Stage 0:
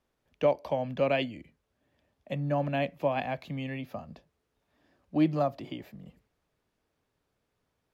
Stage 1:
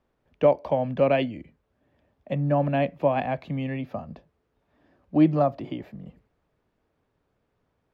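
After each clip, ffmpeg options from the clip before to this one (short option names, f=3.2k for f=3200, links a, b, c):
-af "lowpass=f=1.5k:p=1,volume=6.5dB"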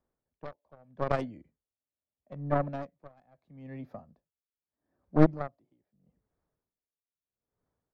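-af "aeval=exprs='0.376*(cos(1*acos(clip(val(0)/0.376,-1,1)))-cos(1*PI/2))+0.0841*(cos(3*acos(clip(val(0)/0.376,-1,1)))-cos(3*PI/2))+0.15*(cos(4*acos(clip(val(0)/0.376,-1,1)))-cos(4*PI/2))+0.0668*(cos(6*acos(clip(val(0)/0.376,-1,1)))-cos(6*PI/2))':c=same,equalizer=f=2.8k:t=o:w=0.69:g=-11.5,aeval=exprs='val(0)*pow(10,-29*(0.5-0.5*cos(2*PI*0.78*n/s))/20)':c=same"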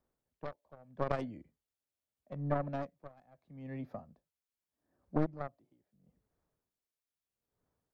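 -af "acompressor=threshold=-28dB:ratio=4"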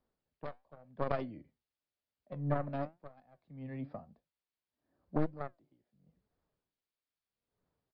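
-af "flanger=delay=3.7:depth=4.8:regen=81:speed=0.94:shape=triangular,aresample=11025,aresample=44100,volume=4dB"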